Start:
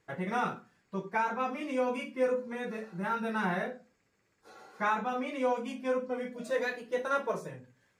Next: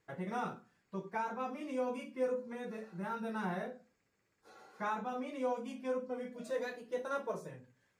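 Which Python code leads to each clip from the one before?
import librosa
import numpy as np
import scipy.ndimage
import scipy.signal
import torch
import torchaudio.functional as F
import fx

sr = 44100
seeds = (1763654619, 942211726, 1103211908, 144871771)

y = fx.dynamic_eq(x, sr, hz=2100.0, q=0.84, threshold_db=-47.0, ratio=4.0, max_db=-6)
y = y * 10.0 ** (-5.0 / 20.0)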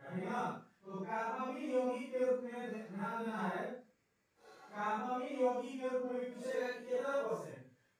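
y = fx.phase_scramble(x, sr, seeds[0], window_ms=200)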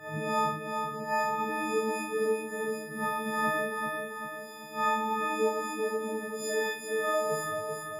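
y = fx.freq_snap(x, sr, grid_st=6)
y = fx.echo_feedback(y, sr, ms=388, feedback_pct=53, wet_db=-5.0)
y = y * 10.0 ** (6.0 / 20.0)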